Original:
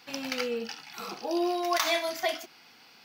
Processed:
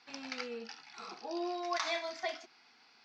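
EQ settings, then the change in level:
loudspeaker in its box 180–5,800 Hz, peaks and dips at 180 Hz −7 dB, 310 Hz −4 dB, 530 Hz −7 dB, 3,000 Hz −6 dB
−6.5 dB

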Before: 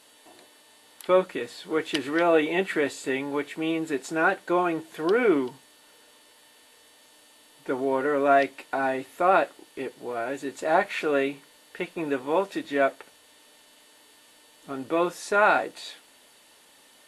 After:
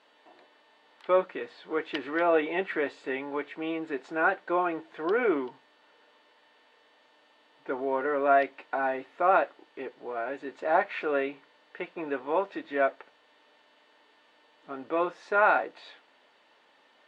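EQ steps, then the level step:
high-pass filter 920 Hz 6 dB per octave
head-to-tape spacing loss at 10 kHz 39 dB
+5.0 dB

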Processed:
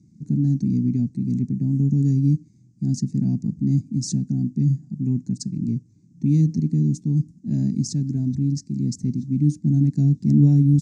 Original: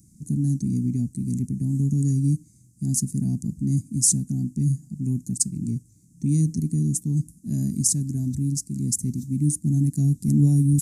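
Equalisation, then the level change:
band-pass filter 120–7,200 Hz
high-frequency loss of the air 190 metres
dynamic equaliser 4,900 Hz, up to +4 dB, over −58 dBFS, Q 1.4
+4.5 dB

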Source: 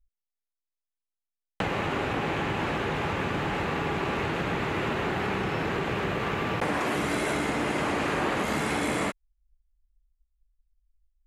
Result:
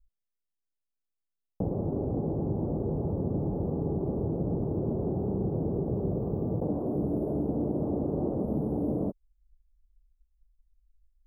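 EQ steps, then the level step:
inverse Chebyshev band-stop filter 2,400–5,900 Hz, stop band 80 dB
low-shelf EQ 420 Hz +9 dB
−5.0 dB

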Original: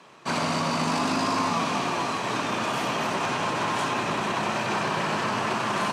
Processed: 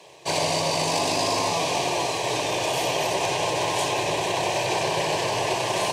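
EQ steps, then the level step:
high-shelf EQ 9,000 Hz +6 dB
phaser with its sweep stopped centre 550 Hz, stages 4
+6.5 dB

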